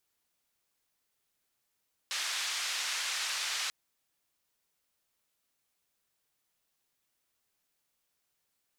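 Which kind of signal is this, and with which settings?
band-limited noise 1,300–5,500 Hz, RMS −34.5 dBFS 1.59 s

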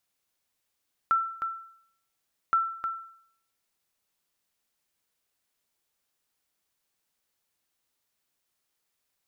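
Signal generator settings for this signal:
ping with an echo 1,340 Hz, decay 0.64 s, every 1.42 s, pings 2, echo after 0.31 s, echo −7 dB −17 dBFS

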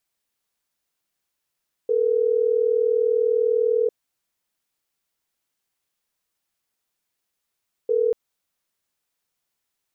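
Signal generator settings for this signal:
call progress tone ringback tone, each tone −20 dBFS 6.24 s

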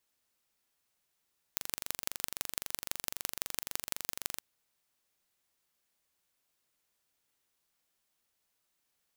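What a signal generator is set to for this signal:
impulse train 23.8 per second, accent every 4, −4 dBFS 2.83 s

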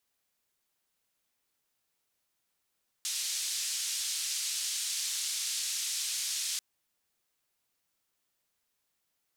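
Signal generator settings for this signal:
band-limited noise 3,900–7,500 Hz, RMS −34 dBFS 3.54 s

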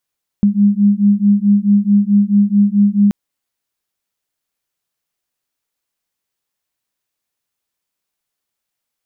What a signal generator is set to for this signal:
two tones that beat 201 Hz, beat 4.6 Hz, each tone −12 dBFS 2.68 s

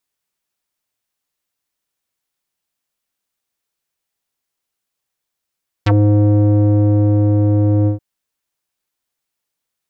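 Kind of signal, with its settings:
subtractive voice square G#2 12 dB per octave, low-pass 420 Hz, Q 2.2, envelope 4 octaves, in 0.06 s, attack 8.8 ms, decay 1.47 s, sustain −2 dB, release 0.12 s, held 2.01 s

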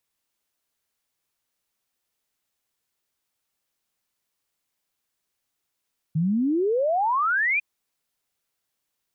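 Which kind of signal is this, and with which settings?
exponential sine sweep 150 Hz → 2,500 Hz 1.45 s −19.5 dBFS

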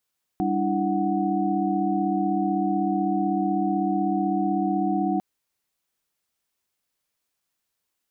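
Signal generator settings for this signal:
held notes G3/D4/E4/F#5 sine, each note −26.5 dBFS 4.80 s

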